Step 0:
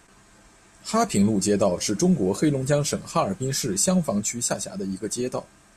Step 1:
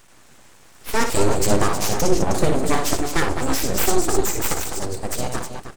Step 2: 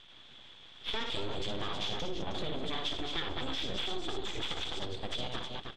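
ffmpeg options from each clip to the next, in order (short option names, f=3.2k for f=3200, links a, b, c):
-af "asubboost=boost=2:cutoff=190,aecho=1:1:59|99|204|210|313:0.473|0.141|0.211|0.251|0.335,aeval=exprs='abs(val(0))':c=same,volume=4dB"
-af "alimiter=limit=-10.5dB:level=0:latency=1:release=70,lowpass=f=3.4k:t=q:w=14,acompressor=threshold=-24dB:ratio=3,volume=-8.5dB"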